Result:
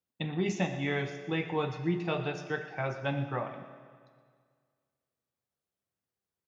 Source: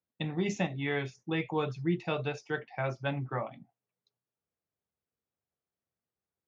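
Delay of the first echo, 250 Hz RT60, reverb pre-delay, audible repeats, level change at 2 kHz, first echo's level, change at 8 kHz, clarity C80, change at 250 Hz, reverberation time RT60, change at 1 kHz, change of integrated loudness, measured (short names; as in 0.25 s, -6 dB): 0.12 s, 1.9 s, 8 ms, 1, +0.5 dB, -15.0 dB, n/a, 9.5 dB, +0.5 dB, 1.9 s, +1.0 dB, +0.5 dB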